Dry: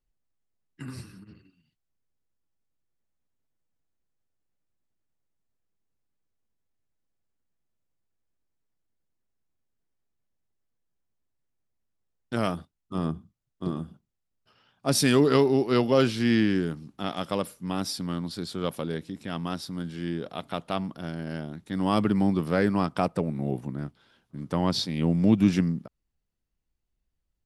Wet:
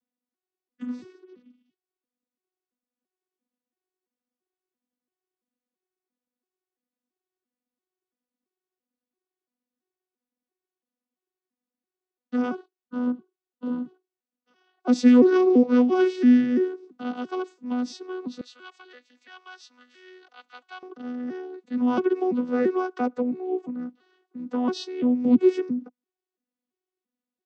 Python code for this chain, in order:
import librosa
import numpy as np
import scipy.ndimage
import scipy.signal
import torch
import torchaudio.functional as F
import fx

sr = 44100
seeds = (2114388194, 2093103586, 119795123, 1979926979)

y = fx.vocoder_arp(x, sr, chord='bare fifth', root=59, every_ms=338)
y = fx.highpass(y, sr, hz=1500.0, slope=12, at=(18.41, 20.83))
y = F.gain(torch.from_numpy(y), 3.5).numpy()